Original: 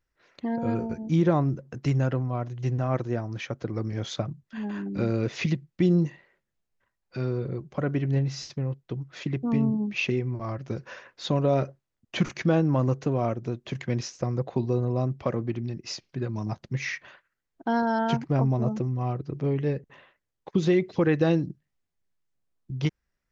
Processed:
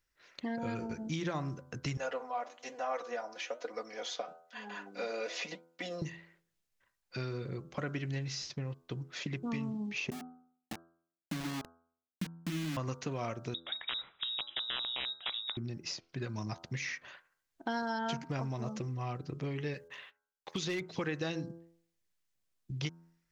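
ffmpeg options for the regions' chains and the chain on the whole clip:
ffmpeg -i in.wav -filter_complex "[0:a]asettb=1/sr,asplit=3[link_01][link_02][link_03];[link_01]atrim=end=1.974[link_04];[link_02]atrim=start=1.97:end=6.02,asetpts=PTS-STARTPTS,afade=type=in:duration=0.004:curve=qsin,afade=type=out:start_time=4.046:duration=0.004:curve=qsin,aecho=1:1:4.1:0.97,atrim=end_sample=178605,flanger=delay=4.5:depth=7.6:regen=74:speed=1.1:shape=triangular,highpass=frequency=590:width_type=q:width=2[link_05];[link_03]atrim=start=6.016[link_06];[link_04][link_05]acrossfade=duration=0.004:curve1=hsin:curve2=qsin[link_07];[link_07][link_06]acrossfade=duration=0.004:curve1=qsin:curve2=hsin,asettb=1/sr,asplit=3[link_08][link_09][link_10];[link_08]atrim=end=10.104[link_11];[link_09]atrim=start=10.1:end=12.77,asetpts=PTS-STARTPTS,afade=type=in:duration=0.004:curve=qsin,afade=type=out:start_time=2.666:duration=0.004:curve=qsin,asuperpass=centerf=220:order=20:qfactor=1.2,aeval=exprs='val(0)*gte(abs(val(0)),0.0251)':channel_layout=same[link_12];[link_10]atrim=start=12.766[link_13];[link_11][link_12]acrossfade=duration=0.004:curve1=hsin:curve2=qsin[link_14];[link_14][link_13]acrossfade=duration=0.004:curve1=qsin:curve2=hsin,asettb=1/sr,asplit=3[link_15][link_16][link_17];[link_15]atrim=end=13.544[link_18];[link_16]atrim=start=13.54:end=15.57,asetpts=PTS-STARTPTS,afade=type=in:duration=0.004:curve=qsin,afade=type=out:start_time=2.026:duration=0.004:curve=qsin,aeval=exprs='(mod(7.08*val(0)+1,2)-1)/7.08':channel_layout=same,lowpass=frequency=3300:width_type=q:width=0.5098,lowpass=frequency=3300:width_type=q:width=0.6013,lowpass=frequency=3300:width_type=q:width=0.9,lowpass=frequency=3300:width_type=q:width=2.563,afreqshift=-3900[link_19];[link_17]atrim=start=15.566[link_20];[link_18][link_19]acrossfade=duration=0.004:curve1=hsin:curve2=qsin[link_21];[link_21][link_20]acrossfade=duration=0.004:curve1=qsin:curve2=hsin,asettb=1/sr,asplit=3[link_22][link_23][link_24];[link_22]atrim=end=19.744[link_25];[link_23]atrim=start=19.74:end=20.81,asetpts=PTS-STARTPTS,afade=type=in:duration=0.004:curve=qsin,afade=type=out:start_time=1.066:duration=0.004:curve=qsin,agate=range=-17dB:threshold=-60dB:ratio=16:release=100:detection=peak,tiltshelf=frequency=940:gain=-6,asoftclip=type=hard:threshold=-19dB[link_26];[link_24]atrim=start=20.806[link_27];[link_25][link_26]acrossfade=duration=0.004:curve1=hsin:curve2=qsin[link_28];[link_28][link_27]acrossfade=duration=0.004:curve1=qsin:curve2=hsin,tiltshelf=frequency=1500:gain=-5,bandreject=frequency=83.76:width_type=h:width=4,bandreject=frequency=167.52:width_type=h:width=4,bandreject=frequency=251.28:width_type=h:width=4,bandreject=frequency=335.04:width_type=h:width=4,bandreject=frequency=418.8:width_type=h:width=4,bandreject=frequency=502.56:width_type=h:width=4,bandreject=frequency=586.32:width_type=h:width=4,bandreject=frequency=670.08:width_type=h:width=4,bandreject=frequency=753.84:width_type=h:width=4,bandreject=frequency=837.6:width_type=h:width=4,bandreject=frequency=921.36:width_type=h:width=4,bandreject=frequency=1005.12:width_type=h:width=4,bandreject=frequency=1088.88:width_type=h:width=4,bandreject=frequency=1172.64:width_type=h:width=4,bandreject=frequency=1256.4:width_type=h:width=4,bandreject=frequency=1340.16:width_type=h:width=4,bandreject=frequency=1423.92:width_type=h:width=4,bandreject=frequency=1507.68:width_type=h:width=4,bandreject=frequency=1591.44:width_type=h:width=4,acrossover=split=1200|6100[link_29][link_30][link_31];[link_29]acompressor=threshold=-35dB:ratio=4[link_32];[link_30]acompressor=threshold=-41dB:ratio=4[link_33];[link_31]acompressor=threshold=-52dB:ratio=4[link_34];[link_32][link_33][link_34]amix=inputs=3:normalize=0" out.wav

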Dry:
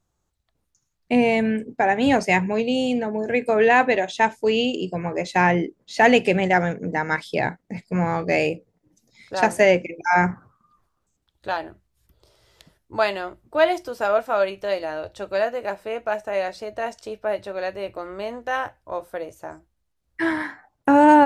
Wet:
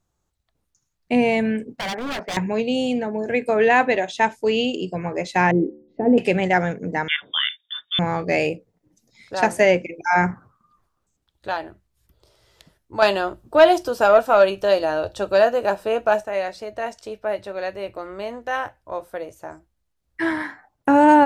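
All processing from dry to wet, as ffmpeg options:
ffmpeg -i in.wav -filter_complex "[0:a]asettb=1/sr,asplit=3[link_01][link_02][link_03];[link_01]atrim=end=1.794[link_04];[link_02]atrim=start=1.79:end=2.37,asetpts=PTS-STARTPTS,afade=type=in:duration=0.004:curve=qsin,afade=type=out:start_time=0.576:duration=0.004:curve=qsin,lowpass=frequency=1700:width=0.5412,lowpass=frequency=1700:width=1.3066,aemphasis=mode=production:type=riaa,aeval=exprs='0.0794*(abs(mod(val(0)/0.0794+3,4)-2)-1)':channel_layout=same[link_05];[link_03]atrim=start=2.366[link_06];[link_04][link_05]acrossfade=duration=0.004:curve1=hsin:curve2=qsin[link_07];[link_07][link_06]acrossfade=duration=0.004:curve1=qsin:curve2=hsin,asettb=1/sr,asplit=3[link_08][link_09][link_10];[link_08]atrim=end=5.514[link_11];[link_09]atrim=start=5.51:end=6.18,asetpts=PTS-STARTPTS,afade=type=in:duration=0.004:curve=qsin,afade=type=out:start_time=0.666:duration=0.004:curve=qsin,lowpass=frequency=360:width_type=q:width=1.8,bandreject=frequency=74.06:width_type=h:width=4,bandreject=frequency=148.12:width_type=h:width=4,bandreject=frequency=222.18:width_type=h:width=4,bandreject=frequency=296.24:width_type=h:width=4,bandreject=frequency=370.3:width_type=h:width=4,bandreject=frequency=444.36:width_type=h:width=4,bandreject=frequency=518.42:width_type=h:width=4,bandreject=frequency=592.48:width_type=h:width=4,bandreject=frequency=666.54:width_type=h:width=4,bandreject=frequency=740.6:width_type=h:width=4,bandreject=frequency=814.66:width_type=h:width=4,bandreject=frequency=888.72:width_type=h:width=4,bandreject=frequency=962.78:width_type=h:width=4,bandreject=frequency=1036.84:width_type=h:width=4,bandreject=frequency=1110.9:width_type=h:width=4,bandreject=frequency=1184.96:width_type=h:width=4,bandreject=frequency=1259.02:width_type=h:width=4,bandreject=frequency=1333.08:width_type=h:width=4,bandreject=frequency=1407.14:width_type=h:width=4,bandreject=frequency=1481.2:width_type=h:width=4,bandreject=frequency=1555.26:width_type=h:width=4,bandreject=frequency=1629.32:width_type=h:width=4,bandreject=frequency=1703.38:width_type=h:width=4,bandreject=frequency=1777.44:width_type=h:width=4,bandreject=frequency=1851.5:width_type=h:width=4,bandreject=frequency=1925.56:width_type=h:width=4[link_12];[link_10]atrim=start=6.176[link_13];[link_11][link_12]acrossfade=duration=0.004:curve1=hsin:curve2=qsin[link_14];[link_14][link_13]acrossfade=duration=0.004:curve1=qsin:curve2=hsin,asettb=1/sr,asplit=3[link_15][link_16][link_17];[link_15]atrim=end=7.084[link_18];[link_16]atrim=start=7.08:end=7.99,asetpts=PTS-STARTPTS,afade=type=in:duration=0.004:curve=qsin,afade=type=out:start_time=0.906:duration=0.004:curve=qsin,lowpass=frequency=3100:width_type=q:width=0.5098,lowpass=frequency=3100:width_type=q:width=0.6013,lowpass=frequency=3100:width_type=q:width=0.9,lowpass=frequency=3100:width_type=q:width=2.563,afreqshift=-3700,asubboost=boost=11.5:cutoff=170,highpass=130[link_19];[link_17]atrim=start=7.986[link_20];[link_18][link_19]acrossfade=duration=0.004:curve1=hsin:curve2=qsin[link_21];[link_21][link_20]acrossfade=duration=0.004:curve1=qsin:curve2=hsin,asettb=1/sr,asplit=3[link_22][link_23][link_24];[link_22]atrim=end=13.024[link_25];[link_23]atrim=start=13.02:end=16.24,asetpts=PTS-STARTPTS,afade=type=in:duration=0.004:curve=qsin,afade=type=out:start_time=3.216:duration=0.004:curve=qsin,equalizer=frequency=2100:width=6.3:gain=-13,acontrast=85[link_26];[link_24]atrim=start=16.236[link_27];[link_25][link_26]acrossfade=duration=0.004:curve1=hsin:curve2=qsin[link_28];[link_28][link_27]acrossfade=duration=0.004:curve1=qsin:curve2=hsin" out.wav

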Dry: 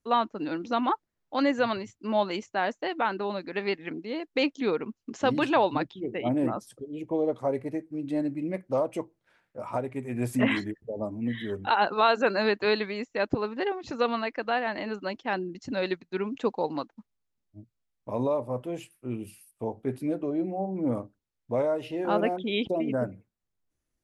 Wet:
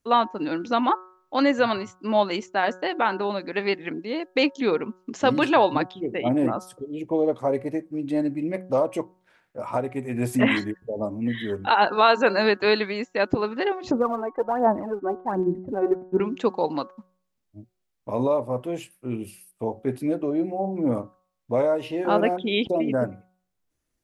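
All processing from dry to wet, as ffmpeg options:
ffmpeg -i in.wav -filter_complex "[0:a]asettb=1/sr,asplit=3[link_01][link_02][link_03];[link_01]atrim=end=13.914[link_04];[link_02]atrim=start=13.91:end=16.2,asetpts=PTS-STARTPTS,afade=type=in:duration=0.004:curve=qsin,afade=type=out:start_time=2.286:duration=0.004:curve=qsin,lowpass=frequency=1000:width=0.5412,lowpass=frequency=1000:width=1.3066,aphaser=in_gain=1:out_gain=1:delay=2.7:decay=0.67:speed=1.3:type=sinusoidal[link_05];[link_03]atrim=start=16.196[link_06];[link_04][link_05]acrossfade=duration=0.004:curve1=hsin:curve2=qsin[link_07];[link_07][link_06]acrossfade=duration=0.004:curve1=qsin:curve2=hsin,lowshelf=frequency=160:gain=-3,bandreject=frequency=184.2:width_type=h:width=4,bandreject=frequency=368.4:width_type=h:width=4,bandreject=frequency=552.6:width_type=h:width=4,bandreject=frequency=736.8:width_type=h:width=4,bandreject=frequency=921:width_type=h:width=4,bandreject=frequency=1105.2:width_type=h:width=4,bandreject=frequency=1289.4:width_type=h:width=4,bandreject=frequency=1473.6:width_type=h:width=4,bandreject=frequency=1657.8:width_type=h:width=4,volume=5dB" out.wav

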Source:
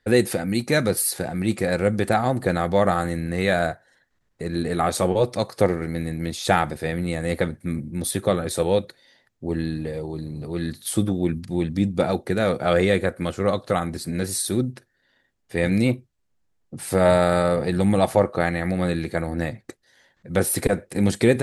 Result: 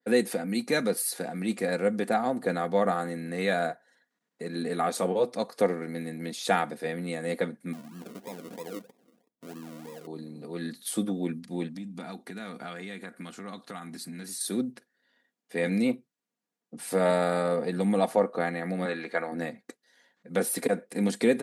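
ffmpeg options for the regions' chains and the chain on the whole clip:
ffmpeg -i in.wav -filter_complex "[0:a]asettb=1/sr,asplit=3[link_01][link_02][link_03];[link_01]atrim=end=7.734[link_04];[link_02]atrim=start=7.73:end=10.07,asetpts=PTS-STARTPTS,afade=type=in:duration=0.004:curve=qsin,afade=type=out:start_time=2.336:duration=0.004:curve=qsin,acompressor=threshold=-35dB:ratio=2:attack=3.2:release=140:knee=1:detection=peak,acrusher=samples=42:mix=1:aa=0.000001:lfo=1:lforange=25.2:lforate=3.1,equalizer=frequency=2400:width=0.31:gain=-6.5[link_05];[link_03]atrim=start=10.066[link_06];[link_04][link_05]acrossfade=duration=0.004:curve1=hsin:curve2=qsin[link_07];[link_07][link_06]acrossfade=duration=0.004:curve1=qsin:curve2=hsin,asettb=1/sr,asplit=3[link_08][link_09][link_10];[link_08]atrim=end=11.684[link_11];[link_09]atrim=start=11.68:end=14.41,asetpts=PTS-STARTPTS,afade=type=in:duration=0.004:curve=qsin,afade=type=out:start_time=2.726:duration=0.004:curve=qsin,equalizer=frequency=520:width_type=o:width=0.73:gain=-12.5,acompressor=threshold=-28dB:ratio=5:attack=3.2:release=140:knee=1:detection=peak[link_12];[link_10]atrim=start=14.406[link_13];[link_11][link_12]acrossfade=duration=0.004:curve1=hsin:curve2=qsin[link_14];[link_14][link_13]acrossfade=duration=0.004:curve1=qsin:curve2=hsin,asettb=1/sr,asplit=3[link_15][link_16][link_17];[link_15]atrim=end=18.854[link_18];[link_16]atrim=start=18.85:end=19.32,asetpts=PTS-STARTPTS,afade=type=in:duration=0.004:curve=qsin,afade=type=out:start_time=0.466:duration=0.004:curve=qsin,bandpass=frequency=1400:width_type=q:width=0.63,acontrast=56[link_19];[link_17]atrim=start=19.316[link_20];[link_18][link_19]acrossfade=duration=0.004:curve1=hsin:curve2=qsin[link_21];[link_21][link_20]acrossfade=duration=0.004:curve1=qsin:curve2=hsin,highpass=frequency=180:width=0.5412,highpass=frequency=180:width=1.3066,aecho=1:1:4.2:0.38,adynamicequalizer=threshold=0.0251:dfrequency=1600:dqfactor=0.7:tfrequency=1600:tqfactor=0.7:attack=5:release=100:ratio=0.375:range=2:mode=cutabove:tftype=highshelf,volume=-6dB" out.wav

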